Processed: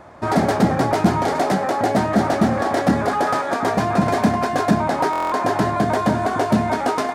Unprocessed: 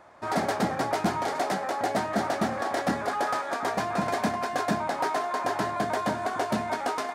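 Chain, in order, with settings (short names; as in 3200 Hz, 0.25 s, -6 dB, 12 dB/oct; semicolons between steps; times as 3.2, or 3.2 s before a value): low shelf 380 Hz +11.5 dB; in parallel at +1.5 dB: limiter -18.5 dBFS, peak gain reduction 11 dB; on the sum: stuck buffer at 5.11, samples 1024, times 8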